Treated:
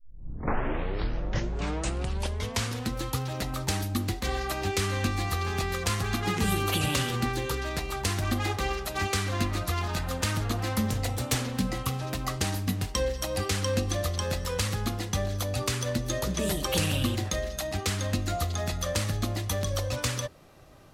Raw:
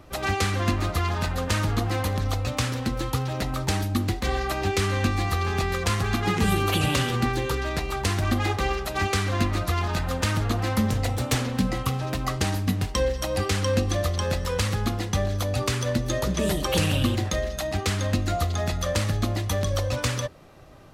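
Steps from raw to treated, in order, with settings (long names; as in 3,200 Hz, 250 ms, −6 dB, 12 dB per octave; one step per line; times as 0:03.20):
turntable start at the beginning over 2.93 s
high-shelf EQ 4,500 Hz +6 dB
level −4.5 dB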